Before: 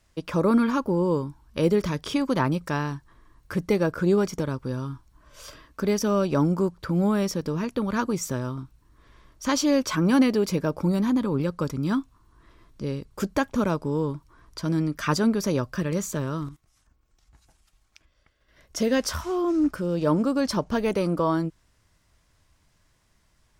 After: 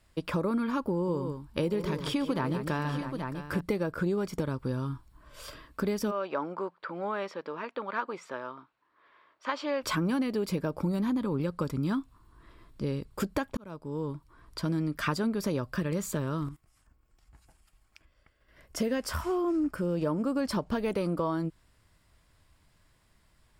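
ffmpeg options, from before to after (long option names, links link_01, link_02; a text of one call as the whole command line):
ffmpeg -i in.wav -filter_complex "[0:a]asettb=1/sr,asplit=3[link_01][link_02][link_03];[link_01]atrim=end=0.934[link_04];[link_02]atrim=start=0.93:end=3.61,asetpts=PTS-STARTPTS,afade=type=in:duration=0.004:curve=qsin,afade=type=out:start_time=2.676:duration=0.004:curve=qsin,aecho=1:1:145|645|830:0.299|0.141|0.237,atrim=end_sample=118188[link_05];[link_03]atrim=start=3.606[link_06];[link_04][link_05]acrossfade=duration=0.004:curve1=hsin:curve2=qsin[link_07];[link_07][link_06]acrossfade=duration=0.004:curve1=qsin:curve2=hsin,asplit=3[link_08][link_09][link_10];[link_08]afade=type=out:start_time=6.1:duration=0.02[link_11];[link_09]highpass=640,lowpass=2500,afade=type=in:start_time=6.1:duration=0.02,afade=type=out:start_time=9.82:duration=0.02[link_12];[link_10]afade=type=in:start_time=9.82:duration=0.02[link_13];[link_11][link_12][link_13]amix=inputs=3:normalize=0,asettb=1/sr,asplit=3[link_14][link_15][link_16];[link_14]atrim=end=16.464[link_17];[link_15]atrim=start=16.46:end=20.52,asetpts=PTS-STARTPTS,afade=type=in:duration=0.004:curve=qsin,afade=type=out:start_time=4.056:duration=0.004:curve=qsin,equalizer=frequency=3800:width_type=o:width=0.4:gain=-6.5[link_18];[link_16]atrim=start=20.516[link_19];[link_17][link_18]acrossfade=duration=0.004:curve1=hsin:curve2=qsin[link_20];[link_20][link_19]acrossfade=duration=0.004:curve1=qsin:curve2=hsin,asplit=2[link_21][link_22];[link_21]atrim=end=13.57,asetpts=PTS-STARTPTS,afade=type=out:start_time=13.566:duration=0.004:curve=hsin[link_23];[link_22]atrim=start=13.57,asetpts=PTS-STARTPTS,afade=type=in:duration=1.04[link_24];[link_23][link_24]concat=n=2:v=0:a=1,equalizer=frequency=6100:width_type=o:width=0.25:gain=-10.5,acompressor=threshold=-26dB:ratio=6" out.wav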